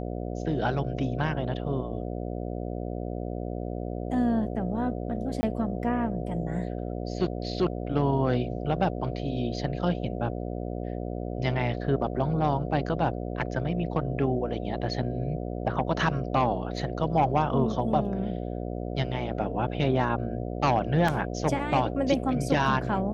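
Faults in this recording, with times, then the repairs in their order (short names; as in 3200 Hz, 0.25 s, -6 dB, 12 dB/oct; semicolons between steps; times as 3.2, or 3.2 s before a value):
buzz 60 Hz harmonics 12 -33 dBFS
5.41–5.43 gap 20 ms
21.08 gap 4.1 ms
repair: de-hum 60 Hz, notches 12; interpolate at 5.41, 20 ms; interpolate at 21.08, 4.1 ms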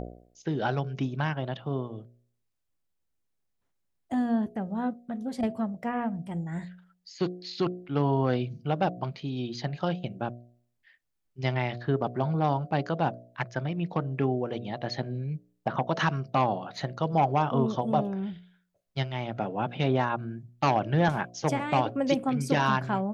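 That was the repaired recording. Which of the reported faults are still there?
none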